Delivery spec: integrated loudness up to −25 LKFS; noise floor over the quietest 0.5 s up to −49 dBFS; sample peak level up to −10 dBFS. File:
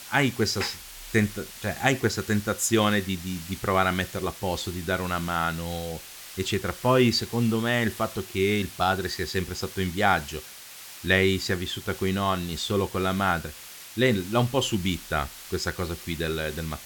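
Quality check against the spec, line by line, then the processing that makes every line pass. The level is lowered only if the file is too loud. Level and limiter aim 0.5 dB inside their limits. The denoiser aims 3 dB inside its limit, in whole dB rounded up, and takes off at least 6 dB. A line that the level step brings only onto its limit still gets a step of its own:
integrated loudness −26.0 LKFS: in spec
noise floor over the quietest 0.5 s −44 dBFS: out of spec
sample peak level −6.0 dBFS: out of spec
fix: broadband denoise 8 dB, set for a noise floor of −44 dBFS
brickwall limiter −10.5 dBFS

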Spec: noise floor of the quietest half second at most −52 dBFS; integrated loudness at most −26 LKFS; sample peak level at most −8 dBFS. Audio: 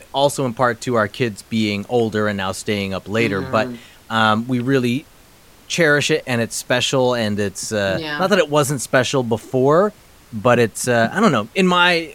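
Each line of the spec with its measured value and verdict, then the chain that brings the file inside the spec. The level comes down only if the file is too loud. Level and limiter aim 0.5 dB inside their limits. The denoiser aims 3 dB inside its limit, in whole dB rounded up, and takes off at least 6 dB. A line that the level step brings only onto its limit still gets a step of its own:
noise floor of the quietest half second −47 dBFS: out of spec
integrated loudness −18.5 LKFS: out of spec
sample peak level −1.5 dBFS: out of spec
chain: level −8 dB

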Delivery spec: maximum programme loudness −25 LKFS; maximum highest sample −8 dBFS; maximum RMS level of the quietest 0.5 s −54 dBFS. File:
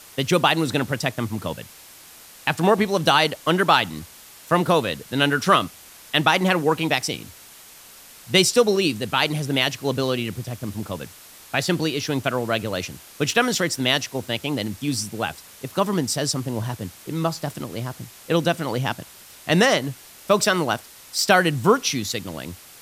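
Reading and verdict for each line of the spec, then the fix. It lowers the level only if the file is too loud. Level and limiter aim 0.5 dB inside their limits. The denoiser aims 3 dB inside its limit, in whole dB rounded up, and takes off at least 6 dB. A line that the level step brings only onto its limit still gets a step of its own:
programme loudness −22.0 LKFS: out of spec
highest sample −3.5 dBFS: out of spec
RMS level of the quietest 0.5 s −46 dBFS: out of spec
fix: broadband denoise 8 dB, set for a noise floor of −46 dBFS
level −3.5 dB
brickwall limiter −8.5 dBFS

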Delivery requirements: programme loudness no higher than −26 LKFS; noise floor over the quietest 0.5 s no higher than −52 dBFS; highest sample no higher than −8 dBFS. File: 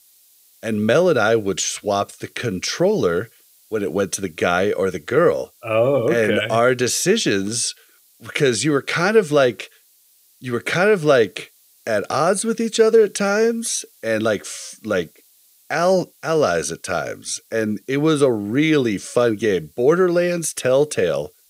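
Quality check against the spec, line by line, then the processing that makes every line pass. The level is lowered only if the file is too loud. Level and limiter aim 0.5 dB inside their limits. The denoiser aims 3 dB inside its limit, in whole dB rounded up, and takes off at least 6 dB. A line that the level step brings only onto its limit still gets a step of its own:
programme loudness −19.0 LKFS: out of spec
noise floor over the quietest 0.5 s −56 dBFS: in spec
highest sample −3.0 dBFS: out of spec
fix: level −7.5 dB

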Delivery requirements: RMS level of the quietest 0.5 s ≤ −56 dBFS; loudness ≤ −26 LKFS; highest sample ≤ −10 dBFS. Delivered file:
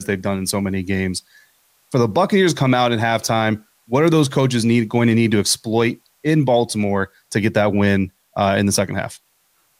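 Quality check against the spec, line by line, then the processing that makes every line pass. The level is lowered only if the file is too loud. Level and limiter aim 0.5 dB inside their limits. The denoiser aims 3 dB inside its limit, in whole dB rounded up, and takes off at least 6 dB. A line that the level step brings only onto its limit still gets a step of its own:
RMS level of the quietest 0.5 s −62 dBFS: in spec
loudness −18.5 LKFS: out of spec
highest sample −5.5 dBFS: out of spec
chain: level −8 dB

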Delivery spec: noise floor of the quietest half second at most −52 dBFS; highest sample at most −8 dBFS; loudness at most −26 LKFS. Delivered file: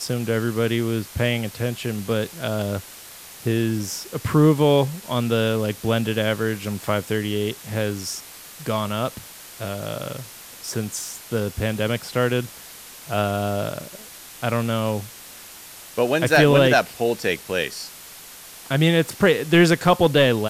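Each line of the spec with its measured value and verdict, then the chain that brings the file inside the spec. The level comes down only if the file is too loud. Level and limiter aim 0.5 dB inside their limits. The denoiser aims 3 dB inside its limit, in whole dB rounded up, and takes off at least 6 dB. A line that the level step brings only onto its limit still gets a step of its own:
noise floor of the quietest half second −42 dBFS: out of spec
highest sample −4.5 dBFS: out of spec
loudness −22.0 LKFS: out of spec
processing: broadband denoise 9 dB, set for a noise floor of −42 dBFS
level −4.5 dB

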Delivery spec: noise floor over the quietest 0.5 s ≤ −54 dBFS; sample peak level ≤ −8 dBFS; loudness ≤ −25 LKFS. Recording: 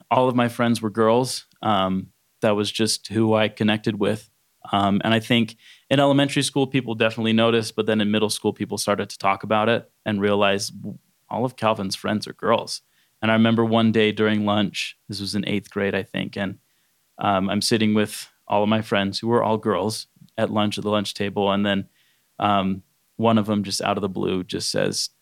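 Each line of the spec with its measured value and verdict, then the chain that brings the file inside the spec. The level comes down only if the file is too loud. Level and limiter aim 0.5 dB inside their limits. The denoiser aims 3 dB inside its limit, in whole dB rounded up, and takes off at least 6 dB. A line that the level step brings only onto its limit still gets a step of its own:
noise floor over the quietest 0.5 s −66 dBFS: in spec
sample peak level −4.5 dBFS: out of spec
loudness −22.0 LKFS: out of spec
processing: level −3.5 dB
brickwall limiter −8.5 dBFS

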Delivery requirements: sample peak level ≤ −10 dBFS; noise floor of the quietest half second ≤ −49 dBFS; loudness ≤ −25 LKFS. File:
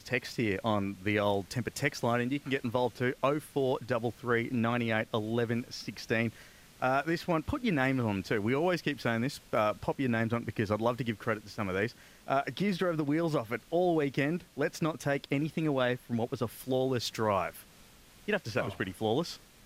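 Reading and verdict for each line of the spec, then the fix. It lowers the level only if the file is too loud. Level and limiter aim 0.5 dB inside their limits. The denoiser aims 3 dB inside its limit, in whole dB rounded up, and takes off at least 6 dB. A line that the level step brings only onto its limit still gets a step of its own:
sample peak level −13.5 dBFS: in spec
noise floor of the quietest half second −57 dBFS: in spec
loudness −31.5 LKFS: in spec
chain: no processing needed

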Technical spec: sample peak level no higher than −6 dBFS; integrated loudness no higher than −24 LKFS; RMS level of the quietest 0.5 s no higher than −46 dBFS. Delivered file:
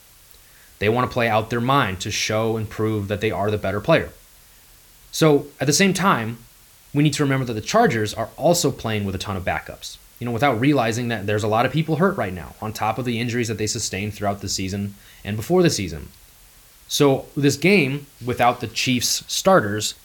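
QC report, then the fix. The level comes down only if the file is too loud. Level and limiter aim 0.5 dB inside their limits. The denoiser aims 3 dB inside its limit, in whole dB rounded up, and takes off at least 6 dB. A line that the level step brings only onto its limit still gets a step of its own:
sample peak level −5.0 dBFS: out of spec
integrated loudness −21.0 LKFS: out of spec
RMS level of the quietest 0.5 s −50 dBFS: in spec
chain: level −3.5 dB

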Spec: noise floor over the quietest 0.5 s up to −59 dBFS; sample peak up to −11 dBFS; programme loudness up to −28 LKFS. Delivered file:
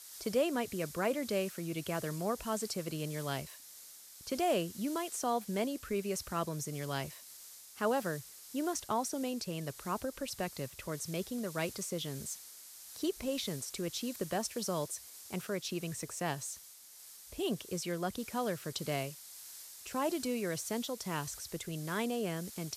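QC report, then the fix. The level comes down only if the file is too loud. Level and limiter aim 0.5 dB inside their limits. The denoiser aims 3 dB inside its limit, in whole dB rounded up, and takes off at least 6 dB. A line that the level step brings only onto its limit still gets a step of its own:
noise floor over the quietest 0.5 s −54 dBFS: out of spec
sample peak −18.5 dBFS: in spec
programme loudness −37.0 LKFS: in spec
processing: broadband denoise 8 dB, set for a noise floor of −54 dBFS

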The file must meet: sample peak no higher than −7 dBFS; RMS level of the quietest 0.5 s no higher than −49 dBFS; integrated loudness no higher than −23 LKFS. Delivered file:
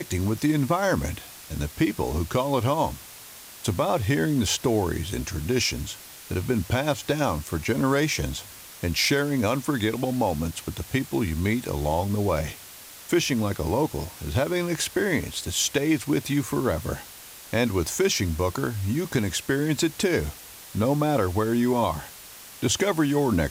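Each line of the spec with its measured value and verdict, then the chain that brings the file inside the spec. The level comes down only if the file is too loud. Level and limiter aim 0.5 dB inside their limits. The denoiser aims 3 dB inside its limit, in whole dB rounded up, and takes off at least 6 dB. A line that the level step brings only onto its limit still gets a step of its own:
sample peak −11.5 dBFS: in spec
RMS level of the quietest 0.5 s −44 dBFS: out of spec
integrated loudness −25.5 LKFS: in spec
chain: broadband denoise 8 dB, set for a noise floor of −44 dBFS

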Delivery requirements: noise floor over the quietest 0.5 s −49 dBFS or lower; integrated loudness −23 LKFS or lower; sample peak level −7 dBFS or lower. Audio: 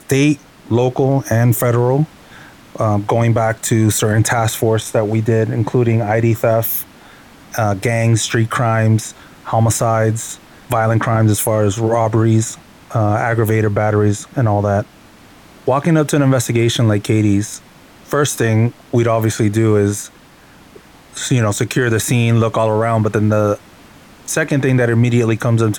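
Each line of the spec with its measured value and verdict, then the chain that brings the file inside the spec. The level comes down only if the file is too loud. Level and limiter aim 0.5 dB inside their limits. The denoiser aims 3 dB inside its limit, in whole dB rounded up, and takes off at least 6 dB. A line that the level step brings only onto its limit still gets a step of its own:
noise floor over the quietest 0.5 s −44 dBFS: out of spec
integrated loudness −15.5 LKFS: out of spec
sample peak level −3.5 dBFS: out of spec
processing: level −8 dB

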